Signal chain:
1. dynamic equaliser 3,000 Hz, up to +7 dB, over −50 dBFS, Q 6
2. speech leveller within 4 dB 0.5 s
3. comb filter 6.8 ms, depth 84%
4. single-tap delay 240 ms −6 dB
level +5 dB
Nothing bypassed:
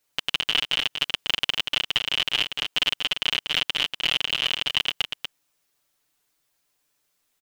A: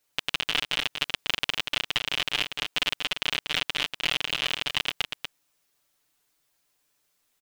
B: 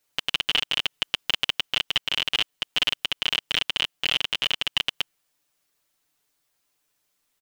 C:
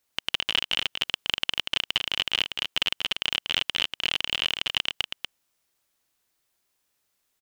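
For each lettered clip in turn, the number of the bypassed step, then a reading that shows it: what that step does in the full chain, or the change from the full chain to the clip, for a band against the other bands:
1, change in crest factor +2.5 dB
4, change in integrated loudness −1.0 LU
3, change in crest factor +2.0 dB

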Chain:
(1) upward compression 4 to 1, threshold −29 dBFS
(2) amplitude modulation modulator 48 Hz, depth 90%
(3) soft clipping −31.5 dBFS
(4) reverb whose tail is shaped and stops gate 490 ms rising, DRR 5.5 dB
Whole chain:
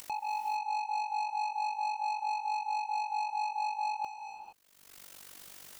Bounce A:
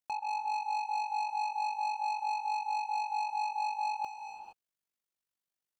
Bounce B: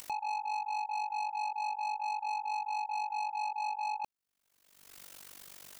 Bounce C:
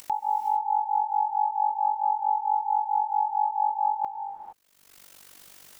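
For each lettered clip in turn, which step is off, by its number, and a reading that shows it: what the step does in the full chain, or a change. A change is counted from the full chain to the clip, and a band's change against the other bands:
1, change in momentary loudness spread −9 LU
4, change in momentary loudness spread −1 LU
3, distortion level −7 dB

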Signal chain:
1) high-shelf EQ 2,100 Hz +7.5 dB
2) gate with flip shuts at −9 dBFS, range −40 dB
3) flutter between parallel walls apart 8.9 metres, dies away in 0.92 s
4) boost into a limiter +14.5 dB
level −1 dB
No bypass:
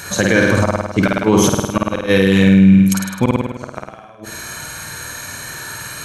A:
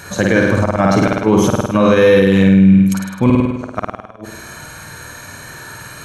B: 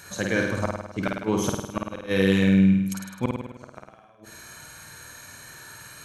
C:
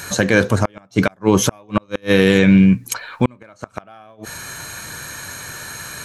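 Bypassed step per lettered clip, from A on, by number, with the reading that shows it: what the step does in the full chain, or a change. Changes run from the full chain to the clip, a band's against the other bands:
1, change in crest factor −1.5 dB
4, change in crest factor +5.5 dB
3, change in crest factor +2.5 dB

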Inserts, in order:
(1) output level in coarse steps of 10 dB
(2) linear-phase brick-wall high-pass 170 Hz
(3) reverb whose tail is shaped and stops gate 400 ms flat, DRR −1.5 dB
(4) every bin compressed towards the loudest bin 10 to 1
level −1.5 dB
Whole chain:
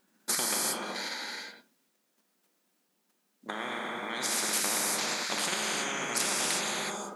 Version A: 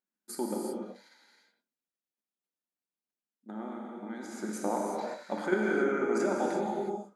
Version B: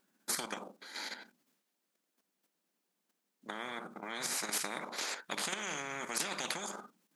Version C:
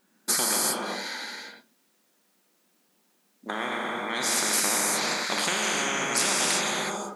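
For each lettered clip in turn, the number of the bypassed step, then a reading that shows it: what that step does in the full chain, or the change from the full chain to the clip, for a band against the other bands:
4, 4 kHz band −22.0 dB
3, change in crest factor +7.5 dB
1, change in momentary loudness spread +2 LU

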